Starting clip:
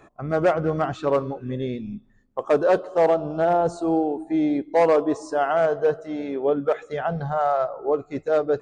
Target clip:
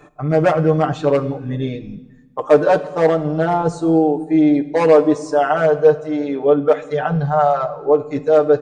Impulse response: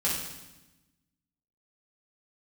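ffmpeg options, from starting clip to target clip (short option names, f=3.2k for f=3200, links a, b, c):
-filter_complex "[0:a]aecho=1:1:6.7:0.92,asplit=2[a][b];[1:a]atrim=start_sample=2205,asetrate=41454,aresample=44100[c];[b][c]afir=irnorm=-1:irlink=0,volume=-21.5dB[d];[a][d]amix=inputs=2:normalize=0,volume=2.5dB"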